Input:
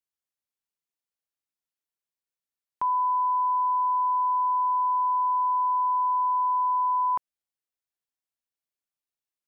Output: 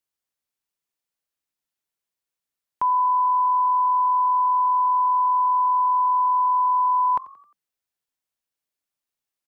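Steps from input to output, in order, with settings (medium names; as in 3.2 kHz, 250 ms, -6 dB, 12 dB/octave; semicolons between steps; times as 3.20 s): frequency-shifting echo 88 ms, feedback 47%, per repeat +45 Hz, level -20 dB; trim +4.5 dB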